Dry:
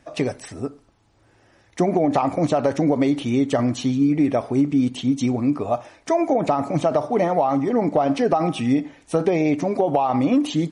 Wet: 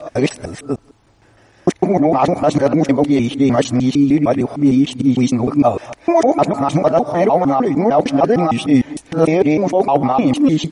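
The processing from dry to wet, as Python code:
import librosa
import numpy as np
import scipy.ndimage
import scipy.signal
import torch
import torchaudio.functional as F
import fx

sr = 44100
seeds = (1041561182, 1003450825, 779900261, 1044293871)

p1 = fx.local_reverse(x, sr, ms=152.0)
p2 = fx.rider(p1, sr, range_db=10, speed_s=0.5)
p3 = p1 + (p2 * librosa.db_to_amplitude(3.0))
y = p3 * librosa.db_to_amplitude(-1.5)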